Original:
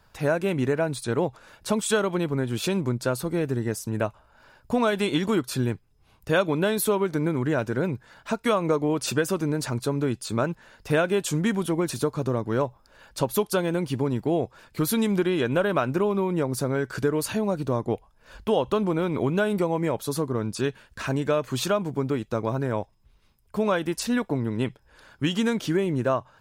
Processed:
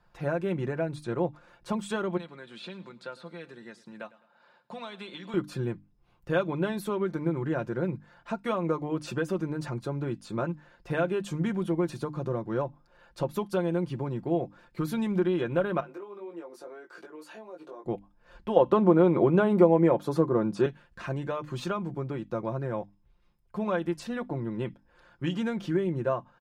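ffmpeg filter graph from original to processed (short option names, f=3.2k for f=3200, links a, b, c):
-filter_complex "[0:a]asettb=1/sr,asplit=3[a][b][c];[a]atrim=end=2.174[d];[b]atrim=start=2.17:end=5.34,asetpts=PTS-STARTPTS,afade=t=in:d=0.004:c=qsin,afade=t=out:st=3.166:d=0.004:c=qsin,acrossover=split=1400|4300[e][f][g];[e]acompressor=threshold=-34dB:ratio=4[h];[f]acompressor=threshold=-36dB:ratio=4[i];[g]acompressor=threshold=-48dB:ratio=4[j];[h][i][j]amix=inputs=3:normalize=0,highpass=f=190:w=0.5412,highpass=f=190:w=1.3066,equalizer=f=340:t=q:w=4:g=-9,equalizer=f=3.9k:t=q:w=4:g=8,equalizer=f=6.1k:t=q:w=4:g=-4,lowpass=f=9.8k:w=0.5412,lowpass=f=9.8k:w=1.3066,aecho=1:1:105|210|315:0.106|0.0434|0.0178,atrim=end_sample=139797[k];[c]atrim=start=5.336[l];[d][k]acrossfade=d=0.004:c1=hsin:c2=qsin[m];[m][l]acrossfade=d=0.004:c1=qsin:c2=hsin,asettb=1/sr,asplit=3[n][o][p];[n]atrim=end=15.804[q];[o]atrim=start=15.8:end=17.85,asetpts=PTS-STARTPTS,afade=t=in:d=0.004:c=qsin,afade=t=out:st=2.046:d=0.004:c=qsin,highpass=f=330:w=0.5412,highpass=f=330:w=1.3066,acompressor=threshold=-33dB:ratio=3:attack=3.2:release=140:knee=1:detection=peak,flanger=delay=18:depth=2:speed=1.8[r];[p]atrim=start=17.846[s];[q][r]acrossfade=d=0.004:c1=hsin:c2=qsin[t];[t][s]acrossfade=d=0.004:c1=qsin:c2=hsin,asettb=1/sr,asplit=3[u][v][w];[u]atrim=end=18.564[x];[v]atrim=start=18.56:end=20.66,asetpts=PTS-STARTPTS,afade=t=in:d=0.004:c=qsin,afade=t=out:st=2.096:d=0.004:c=qsin,highpass=f=350:p=1,acontrast=59,tiltshelf=f=1.4k:g=6[y];[w]atrim=start=20.656[z];[x][y]acrossfade=d=0.004:c1=hsin:c2=qsin[aa];[aa][z]acrossfade=d=0.004:c1=qsin:c2=hsin,lowpass=f=1.8k:p=1,bandreject=f=50:t=h:w=6,bandreject=f=100:t=h:w=6,bandreject=f=150:t=h:w=6,bandreject=f=200:t=h:w=6,bandreject=f=250:t=h:w=6,bandreject=f=300:t=h:w=6,aecho=1:1:5.7:0.59,volume=-5.5dB"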